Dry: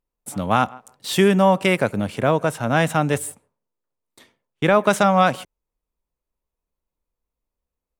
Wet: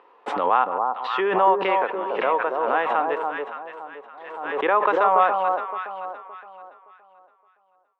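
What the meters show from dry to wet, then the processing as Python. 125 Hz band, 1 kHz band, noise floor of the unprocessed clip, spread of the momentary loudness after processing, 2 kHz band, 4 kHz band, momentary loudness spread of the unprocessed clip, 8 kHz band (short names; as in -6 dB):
under -25 dB, +2.5 dB, under -85 dBFS, 19 LU, -2.5 dB, -8.5 dB, 12 LU, under -30 dB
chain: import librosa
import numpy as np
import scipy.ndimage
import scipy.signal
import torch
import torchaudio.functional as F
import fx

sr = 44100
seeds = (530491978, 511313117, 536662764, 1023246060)

y = fx.cabinet(x, sr, low_hz=460.0, low_slope=24, high_hz=2300.0, hz=(620.0, 1000.0, 1500.0, 2200.0), db=(-10, 3, -5, -8))
y = fx.echo_alternate(y, sr, ms=284, hz=1100.0, feedback_pct=55, wet_db=-3)
y = fx.pre_swell(y, sr, db_per_s=43.0)
y = y * librosa.db_to_amplitude(1.0)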